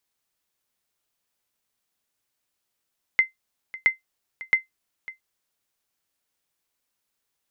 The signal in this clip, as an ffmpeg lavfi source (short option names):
-f lavfi -i "aevalsrc='0.355*(sin(2*PI*2070*mod(t,0.67))*exp(-6.91*mod(t,0.67)/0.14)+0.119*sin(2*PI*2070*max(mod(t,0.67)-0.55,0))*exp(-6.91*max(mod(t,0.67)-0.55,0)/0.14))':d=2.01:s=44100"